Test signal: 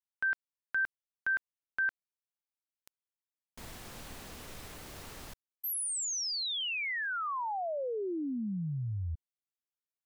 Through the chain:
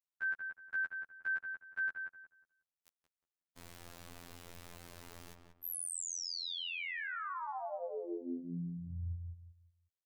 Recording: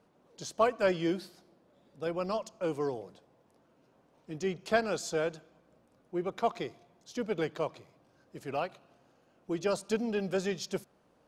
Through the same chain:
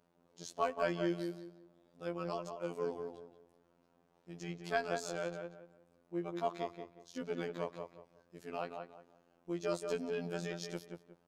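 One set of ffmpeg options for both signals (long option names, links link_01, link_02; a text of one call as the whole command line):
ffmpeg -i in.wav -filter_complex "[0:a]asplit=2[link_01][link_02];[link_02]adelay=181,lowpass=frequency=1900:poles=1,volume=-5dB,asplit=2[link_03][link_04];[link_04]adelay=181,lowpass=frequency=1900:poles=1,volume=0.29,asplit=2[link_05][link_06];[link_06]adelay=181,lowpass=frequency=1900:poles=1,volume=0.29,asplit=2[link_07][link_08];[link_08]adelay=181,lowpass=frequency=1900:poles=1,volume=0.29[link_09];[link_01][link_03][link_05][link_07][link_09]amix=inputs=5:normalize=0,afftfilt=real='hypot(re,im)*cos(PI*b)':imag='0':win_size=2048:overlap=0.75,volume=-3.5dB" out.wav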